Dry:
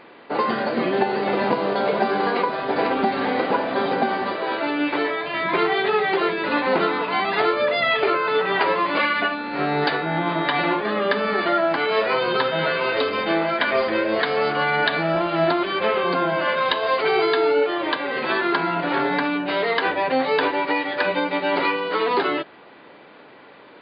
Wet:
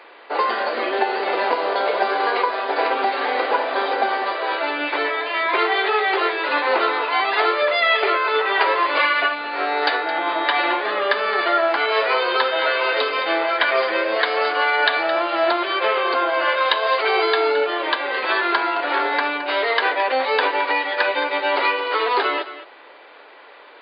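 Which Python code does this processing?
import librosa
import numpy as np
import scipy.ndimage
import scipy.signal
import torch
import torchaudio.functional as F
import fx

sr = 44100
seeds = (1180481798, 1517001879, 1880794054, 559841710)

y = scipy.signal.sosfilt(scipy.signal.bessel(6, 550.0, 'highpass', norm='mag', fs=sr, output='sos'), x)
y = y + 10.0 ** (-13.5 / 20.0) * np.pad(y, (int(217 * sr / 1000.0), 0))[:len(y)]
y = y * 10.0 ** (3.5 / 20.0)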